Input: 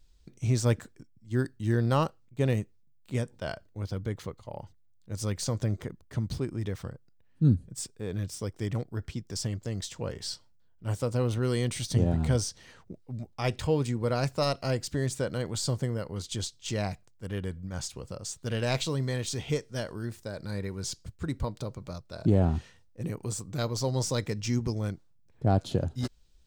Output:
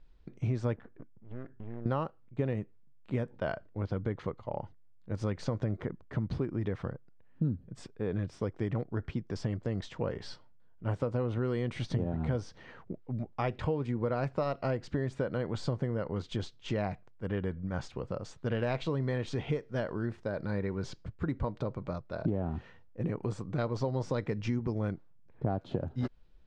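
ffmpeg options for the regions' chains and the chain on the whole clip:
-filter_complex "[0:a]asettb=1/sr,asplit=3[s0][s1][s2];[s0]atrim=end=0.764[s3];[s1]atrim=start=0.76:end=1.86,asetpts=PTS-STARTPTS,afade=t=in:d=0.004:c=qsin,afade=t=out:st=1.096:d=0.004:c=qsin,lowpass=2000,acompressor=threshold=0.0112:ratio=6:attack=3.2:release=140:knee=1:detection=peak,aeval=exprs='max(val(0),0)':c=same[s4];[s2]atrim=start=1.856[s5];[s3][s4]acrossfade=d=0.004:c1=hsin:c2=qsin[s6];[s6][s5]acrossfade=d=0.004:c1=qsin:c2=hsin,lowpass=1900,equalizer=f=61:w=0.63:g=-6.5,acompressor=threshold=0.0224:ratio=6,volume=1.78"

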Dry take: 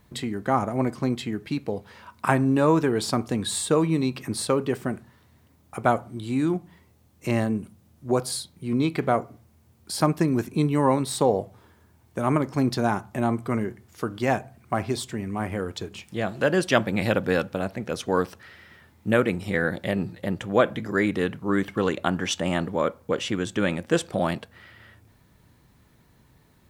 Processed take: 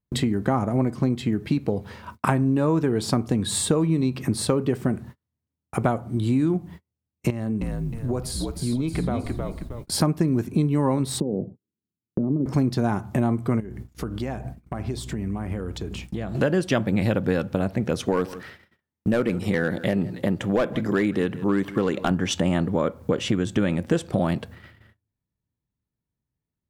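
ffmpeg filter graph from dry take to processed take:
-filter_complex "[0:a]asettb=1/sr,asplit=3[s0][s1][s2];[s0]atrim=end=7.304[s3];[s1]atrim=start=7.3:end=9.92,asetpts=PTS-STARTPTS,afade=t=in:d=0.004:c=qsin,afade=t=out:st=2.616:d=0.004:c=qsin,acompressor=threshold=0.0126:ratio=2.5:attack=3.2:release=140:knee=1:detection=peak,asplit=6[s4][s5][s6][s7][s8][s9];[s5]adelay=313,afreqshift=-62,volume=0.596[s10];[s6]adelay=626,afreqshift=-124,volume=0.245[s11];[s7]adelay=939,afreqshift=-186,volume=0.1[s12];[s8]adelay=1252,afreqshift=-248,volume=0.0412[s13];[s9]adelay=1565,afreqshift=-310,volume=0.0168[s14];[s4][s10][s11][s12][s13][s14]amix=inputs=6:normalize=0,atrim=end_sample=115542[s15];[s2]atrim=start=9.916[s16];[s3][s15]acrossfade=d=0.004:c1=hsin:c2=qsin[s17];[s17][s16]acrossfade=d=0.004:c1=qsin:c2=hsin,asettb=1/sr,asplit=3[s18][s19][s20];[s18]atrim=end=11.204[s21];[s19]atrim=start=11.2:end=12.46,asetpts=PTS-STARTPTS,afade=t=in:d=0.004:c=qsin,afade=t=out:st=1.256:d=0.004:c=qsin,acompressor=threshold=0.0794:ratio=16:attack=3.2:release=140:knee=1:detection=peak,asuperpass=centerf=240:order=4:qfactor=0.98[s22];[s20]atrim=start=12.456[s23];[s21][s22]acrossfade=d=0.004:c1=hsin:c2=qsin[s24];[s24][s23]acrossfade=d=0.004:c1=qsin:c2=hsin,asettb=1/sr,asplit=3[s25][s26][s27];[s25]atrim=end=13.604[s28];[s26]atrim=start=13.6:end=16.35,asetpts=PTS-STARTPTS,afade=t=in:d=0.004:c=qsin,afade=t=out:st=2.746:d=0.004:c=qsin,acompressor=threshold=0.0112:ratio=4:attack=3.2:release=140:knee=1:detection=peak,aeval=exprs='val(0)+0.00251*(sin(2*PI*60*n/s)+sin(2*PI*2*60*n/s)/2+sin(2*PI*3*60*n/s)/3+sin(2*PI*4*60*n/s)/4+sin(2*PI*5*60*n/s)/5)':c=same[s29];[s27]atrim=start=16.346[s30];[s28][s29]acrossfade=d=0.004:c1=hsin:c2=qsin[s31];[s31][s30]acrossfade=d=0.004:c1=qsin:c2=hsin,asettb=1/sr,asplit=3[s32][s33][s34];[s32]atrim=end=18.054[s35];[s33]atrim=start=18.05:end=22.11,asetpts=PTS-STARTPTS,afade=t=in:d=0.004:c=qsin,afade=t=out:st=4.056:d=0.004:c=qsin,highpass=f=190:p=1,volume=5.96,asoftclip=hard,volume=0.168,aecho=1:1:163:0.0891,atrim=end_sample=179046[s36];[s34]atrim=start=22.106[s37];[s35][s36]acrossfade=d=0.004:c1=hsin:c2=qsin[s38];[s38][s37]acrossfade=d=0.004:c1=qsin:c2=hsin,agate=range=0.01:threshold=0.00447:ratio=16:detection=peak,lowshelf=f=400:g=10,acompressor=threshold=0.0562:ratio=4,volume=1.78"

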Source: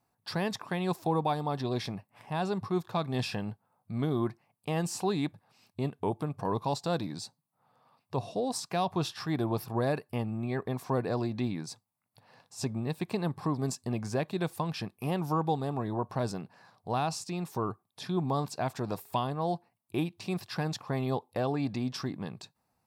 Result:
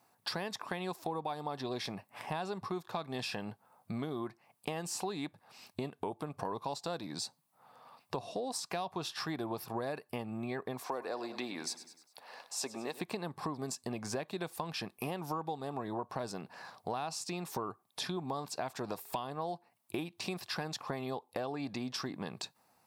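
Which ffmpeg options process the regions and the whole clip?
-filter_complex "[0:a]asettb=1/sr,asplit=3[s0][s1][s2];[s0]atrim=end=10.824[s3];[s1]atrim=start=10.82:end=13.01,asetpts=PTS-STARTPTS,afade=t=in:d=0.004:c=qsin,afade=t=out:st=2.186:d=0.004:c=qsin,highpass=360,aecho=1:1:100|200|300|400:0.158|0.0745|0.035|0.0165,atrim=end_sample=96579[s4];[s2]atrim=start=13.006[s5];[s3][s4]acrossfade=d=0.004:c1=hsin:c2=qsin[s6];[s6][s5]acrossfade=d=0.004:c1=qsin:c2=hsin,highpass=f=390:p=1,acompressor=threshold=0.00562:ratio=6,volume=2.99"

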